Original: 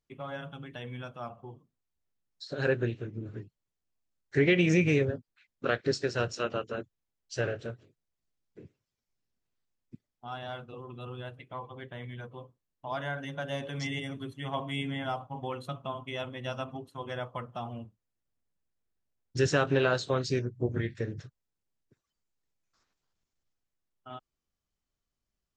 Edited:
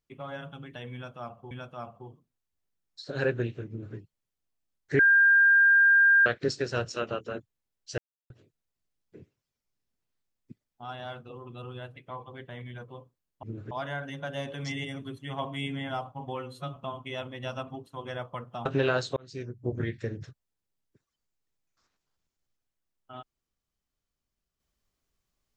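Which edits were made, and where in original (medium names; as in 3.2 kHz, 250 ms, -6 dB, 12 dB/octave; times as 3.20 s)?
0.94–1.51 s: loop, 2 plays
3.11–3.39 s: copy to 12.86 s
4.42–5.69 s: bleep 1.6 kHz -16 dBFS
7.41–7.73 s: mute
15.51–15.78 s: stretch 1.5×
17.67–19.62 s: delete
20.13–20.74 s: fade in linear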